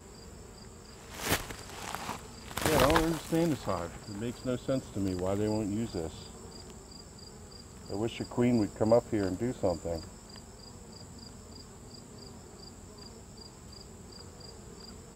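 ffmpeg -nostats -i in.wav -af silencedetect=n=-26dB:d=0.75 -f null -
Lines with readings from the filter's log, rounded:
silence_start: 0.00
silence_end: 1.25 | silence_duration: 1.25
silence_start: 6.07
silence_end: 7.92 | silence_duration: 1.86
silence_start: 9.96
silence_end: 15.15 | silence_duration: 5.19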